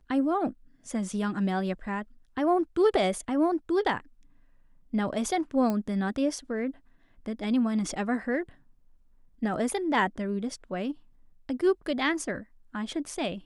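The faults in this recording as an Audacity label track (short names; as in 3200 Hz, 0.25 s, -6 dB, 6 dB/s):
5.700000	5.700000	pop -17 dBFS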